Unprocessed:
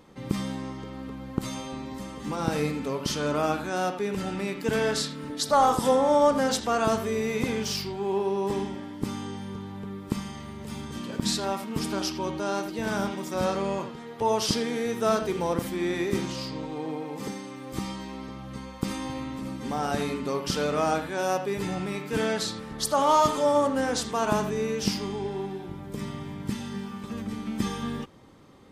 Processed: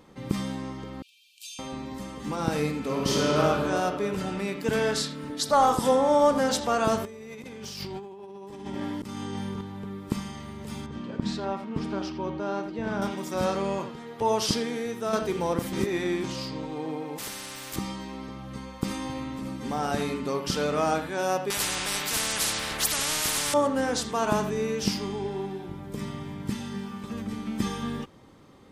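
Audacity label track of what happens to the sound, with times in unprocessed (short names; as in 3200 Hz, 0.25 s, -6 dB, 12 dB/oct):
1.020000	1.590000	brick-wall FIR high-pass 2300 Hz
2.770000	3.380000	reverb throw, RT60 2.8 s, DRR -3 dB
5.730000	6.290000	echo throw 0.45 s, feedback 50%, level -17.5 dB
7.050000	9.610000	negative-ratio compressor -38 dBFS
10.860000	13.020000	tape spacing loss at 10 kHz 23 dB
14.500000	15.130000	fade out, to -6.5 dB
15.730000	16.240000	reverse
17.180000	17.760000	spectral compressor 4:1
21.500000	23.540000	spectral compressor 10:1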